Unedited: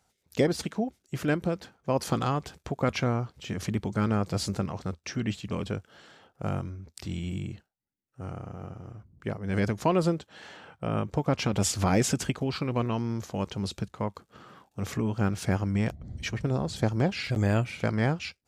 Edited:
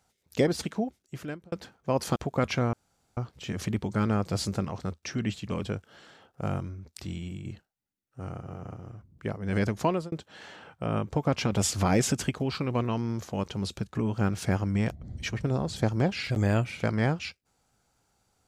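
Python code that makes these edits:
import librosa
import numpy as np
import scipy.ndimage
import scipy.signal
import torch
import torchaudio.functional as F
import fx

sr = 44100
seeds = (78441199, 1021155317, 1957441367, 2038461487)

y = fx.edit(x, sr, fx.fade_out_span(start_s=0.79, length_s=0.73),
    fx.cut(start_s=2.16, length_s=0.45),
    fx.insert_room_tone(at_s=3.18, length_s=0.44),
    fx.fade_out_to(start_s=6.93, length_s=0.53, floor_db=-7.0),
    fx.reverse_span(start_s=8.43, length_s=0.32),
    fx.fade_out_span(start_s=9.85, length_s=0.28),
    fx.cut(start_s=13.96, length_s=0.99), tone=tone)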